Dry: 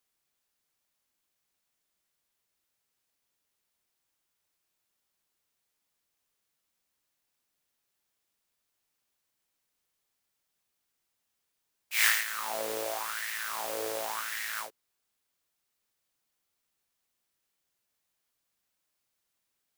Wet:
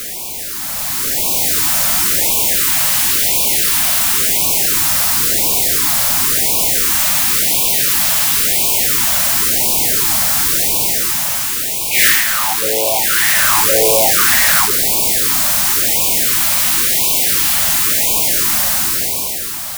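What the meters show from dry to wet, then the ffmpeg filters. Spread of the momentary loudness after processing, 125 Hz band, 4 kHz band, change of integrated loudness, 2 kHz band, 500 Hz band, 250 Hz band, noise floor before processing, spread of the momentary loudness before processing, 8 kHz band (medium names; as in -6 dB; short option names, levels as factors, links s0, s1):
5 LU, no reading, +26.0 dB, +19.5 dB, +19.0 dB, +20.0 dB, +28.5 dB, -81 dBFS, 9 LU, +30.0 dB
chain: -filter_complex "[0:a]aeval=exprs='val(0)+0.5*0.0398*sgn(val(0))':c=same,dynaudnorm=f=190:g=11:m=3.76,highshelf=f=4100:g=7.5,asoftclip=type=tanh:threshold=0.447,asplit=2[s0][s1];[s1]acrusher=samples=9:mix=1:aa=0.000001:lfo=1:lforange=9:lforate=0.22,volume=0.266[s2];[s0][s2]amix=inputs=2:normalize=0,afftfilt=real='re*(1-between(b*sr/1024,360*pow(1600/360,0.5+0.5*sin(2*PI*0.95*pts/sr))/1.41,360*pow(1600/360,0.5+0.5*sin(2*PI*0.95*pts/sr))*1.41))':imag='im*(1-between(b*sr/1024,360*pow(1600/360,0.5+0.5*sin(2*PI*0.95*pts/sr))/1.41,360*pow(1600/360,0.5+0.5*sin(2*PI*0.95*pts/sr))*1.41))':win_size=1024:overlap=0.75,volume=1.41"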